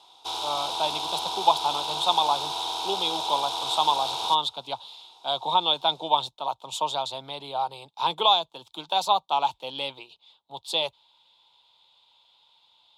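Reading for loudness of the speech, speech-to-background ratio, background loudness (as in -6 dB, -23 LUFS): -26.5 LUFS, 3.0 dB, -29.5 LUFS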